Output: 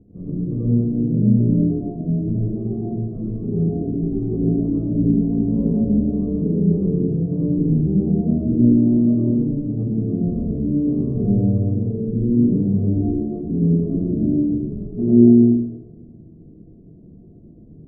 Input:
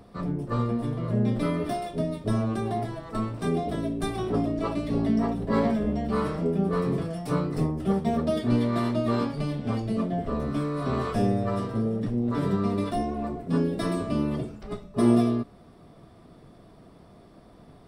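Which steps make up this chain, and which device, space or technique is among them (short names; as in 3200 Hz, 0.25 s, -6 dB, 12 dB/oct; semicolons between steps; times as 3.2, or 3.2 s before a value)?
next room (LPF 370 Hz 24 dB/oct; reverb RT60 1.1 s, pre-delay 79 ms, DRR -6.5 dB); gain +1 dB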